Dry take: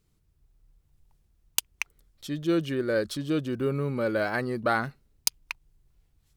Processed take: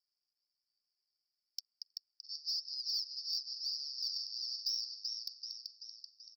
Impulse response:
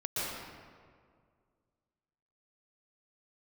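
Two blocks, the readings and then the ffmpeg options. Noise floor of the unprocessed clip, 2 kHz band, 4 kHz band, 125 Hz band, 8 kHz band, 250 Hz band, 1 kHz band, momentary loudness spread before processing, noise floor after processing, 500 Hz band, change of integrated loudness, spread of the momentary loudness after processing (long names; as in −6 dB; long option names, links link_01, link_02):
−70 dBFS, below −40 dB, +3.0 dB, below −40 dB, −14.0 dB, below −40 dB, below −40 dB, 11 LU, below −85 dBFS, below −40 dB, −9.0 dB, 13 LU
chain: -af "acrusher=samples=37:mix=1:aa=0.000001:lfo=1:lforange=37:lforate=1,asuperpass=centerf=5000:order=8:qfactor=4.9,aecho=1:1:384|768|1152|1536|1920|2304|2688:0.531|0.281|0.149|0.079|0.0419|0.0222|0.0118,aeval=exprs='0.0531*(cos(1*acos(clip(val(0)/0.0531,-1,1)))-cos(1*PI/2))+0.0211*(cos(5*acos(clip(val(0)/0.0531,-1,1)))-cos(5*PI/2))+0.000596*(cos(6*acos(clip(val(0)/0.0531,-1,1)))-cos(6*PI/2))':channel_layout=same"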